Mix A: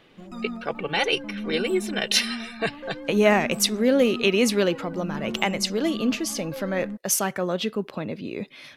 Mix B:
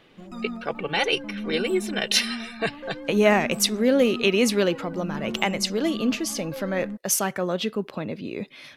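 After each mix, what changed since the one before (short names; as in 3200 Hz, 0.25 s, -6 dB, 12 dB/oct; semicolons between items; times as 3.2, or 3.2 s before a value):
none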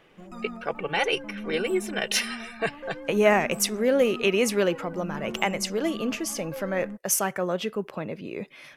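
master: add fifteen-band EQ 100 Hz -6 dB, 250 Hz -6 dB, 4000 Hz -9 dB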